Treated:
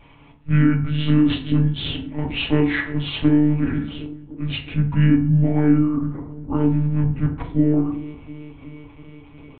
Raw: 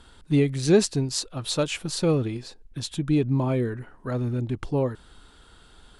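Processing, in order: high-pass 53 Hz 12 dB/octave; band-stop 920 Hz, Q 11; wide varispeed 0.694×; peaking EQ 320 Hz +4.5 dB 0.6 oct; feedback echo behind a low-pass 318 ms, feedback 73%, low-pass 790 Hz, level -19.5 dB; peak limiter -16.5 dBFS, peak gain reduction 10.5 dB; tempo 0.9×; monotone LPC vocoder at 8 kHz 150 Hz; dynamic bell 1.1 kHz, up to +4 dB, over -41 dBFS, Q 0.72; on a send at -1 dB: reverberation RT60 0.50 s, pre-delay 4 ms; on the sum: trim +2 dB

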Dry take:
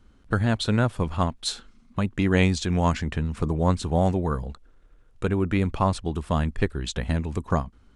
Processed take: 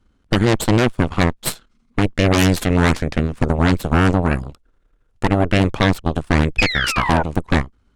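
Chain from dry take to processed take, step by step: painted sound fall, 6.58–7.23 s, 700–2600 Hz -27 dBFS; Chebyshev shaper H 3 -22 dB, 5 -42 dB, 7 -29 dB, 8 -6 dB, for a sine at -6 dBFS; trim +1 dB

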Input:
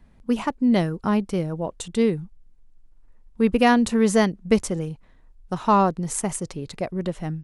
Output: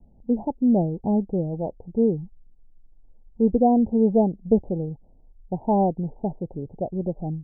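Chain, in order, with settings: steep low-pass 860 Hz 96 dB/octave

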